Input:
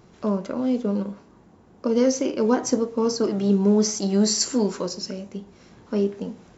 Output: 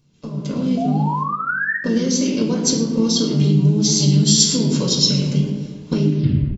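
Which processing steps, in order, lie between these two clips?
tape stop on the ending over 0.48 s; gate -41 dBFS, range -14 dB; tape echo 111 ms, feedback 65%, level -8.5 dB, low-pass 2.1 kHz; harmony voices -5 st -5 dB; painted sound rise, 0.77–1.76 s, 660–1900 Hz -17 dBFS; compression 8:1, threshold -32 dBFS, peak gain reduction 19.5 dB; high-order bell 890 Hz -14 dB 2.7 oct; level rider gain up to 14 dB; bass shelf 110 Hz -7 dB; reverberation RT60 0.65 s, pre-delay 4 ms, DRR -1 dB; trim +5 dB

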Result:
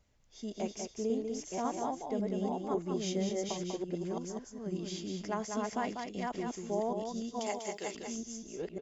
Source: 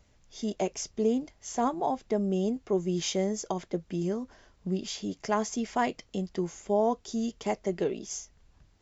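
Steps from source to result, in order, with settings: chunks repeated in reverse 549 ms, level -2 dB; 7.39–7.95 s: tilt EQ +4.5 dB/octave; delay 195 ms -5.5 dB; trim -8.5 dB

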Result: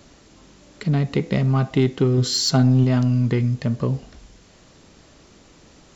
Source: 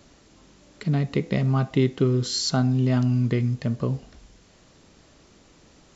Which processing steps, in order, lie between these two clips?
2.17–2.84 s: comb 7.4 ms, depth 62%; in parallel at -4 dB: saturation -21.5 dBFS, distortion -10 dB

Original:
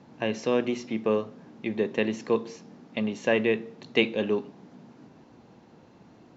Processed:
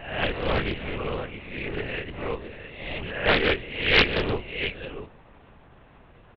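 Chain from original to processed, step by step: reverse spectral sustain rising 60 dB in 0.71 s; tilt shelf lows -10 dB, about 1.1 kHz; 0.87–3.26 s: compression 5:1, threshold -31 dBFS, peak gain reduction 11.5 dB; distance through air 470 m; delay 663 ms -11 dB; LPC vocoder at 8 kHz whisper; loudspeaker Doppler distortion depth 0.7 ms; trim +6.5 dB

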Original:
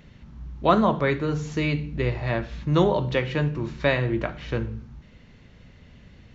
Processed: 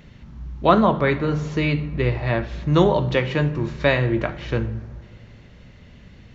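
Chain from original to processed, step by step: 0.69–2.47 s: low-pass 5.1 kHz 12 dB/octave; on a send: reverberation RT60 3.1 s, pre-delay 4 ms, DRR 17.5 dB; on the sum: trim +3.5 dB

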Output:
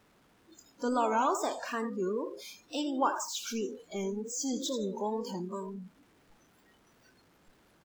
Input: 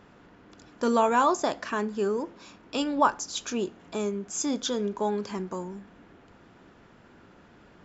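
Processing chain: jump at every zero crossing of -31 dBFS; wow and flutter 130 cents; on a send: frequency-shifting echo 84 ms, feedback 46%, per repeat +37 Hz, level -9.5 dB; on the sum: spectral noise reduction 22 dB; trim -7.5 dB

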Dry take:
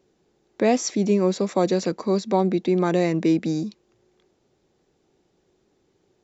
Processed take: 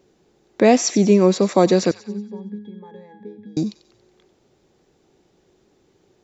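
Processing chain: 1.91–3.57 s: pitch-class resonator G#, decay 0.4 s; feedback echo behind a high-pass 93 ms, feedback 49%, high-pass 1.5 kHz, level -13.5 dB; trim +6 dB

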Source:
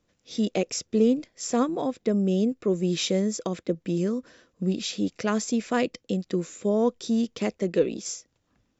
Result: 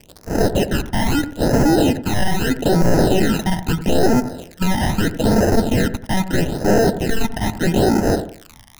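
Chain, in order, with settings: partial rectifier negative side -3 dB; sample-and-hold 39×; crackle 59 per s -42 dBFS; sine folder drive 18 dB, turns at -11 dBFS; phase shifter stages 12, 0.78 Hz, lowest notch 430–3400 Hz; on a send: feedback echo behind a low-pass 89 ms, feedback 32%, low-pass 1.5 kHz, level -11 dB

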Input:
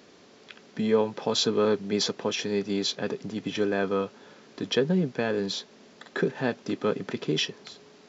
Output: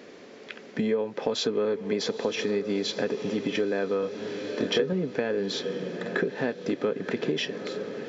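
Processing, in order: graphic EQ 250/500/2000 Hz +5/+9/+8 dB; echo that smears into a reverb 916 ms, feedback 56%, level -15 dB; compression 6:1, threshold -24 dBFS, peak gain reduction 15 dB; 4.00–4.93 s: doubling 27 ms -4 dB

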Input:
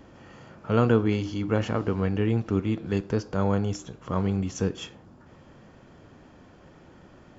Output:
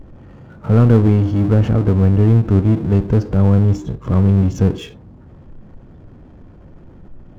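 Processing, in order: spectral noise reduction 15 dB; tilt EQ -4 dB/octave; power-law waveshaper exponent 0.7; trim -1 dB

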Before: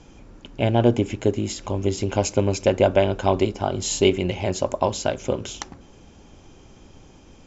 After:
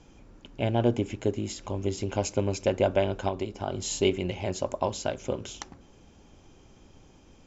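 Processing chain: 3.28–3.68 s: compression 4:1, threshold -21 dBFS, peak gain reduction 6.5 dB; trim -6.5 dB

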